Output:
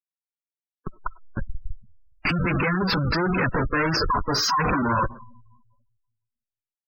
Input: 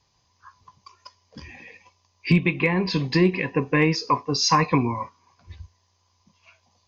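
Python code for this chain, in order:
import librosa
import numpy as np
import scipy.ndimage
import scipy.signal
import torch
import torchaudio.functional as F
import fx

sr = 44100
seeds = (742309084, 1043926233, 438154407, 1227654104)

y = scipy.signal.sosfilt(scipy.signal.butter(2, 120.0, 'highpass', fs=sr, output='sos'), x)
y = fx.schmitt(y, sr, flips_db=-34.5)
y = fx.peak_eq(y, sr, hz=1400.0, db=10.0, octaves=0.84)
y = fx.leveller(y, sr, passes=1)
y = fx.rev_freeverb(y, sr, rt60_s=1.4, hf_ratio=0.4, predelay_ms=20, drr_db=17.5)
y = fx.spec_gate(y, sr, threshold_db=-15, keep='strong')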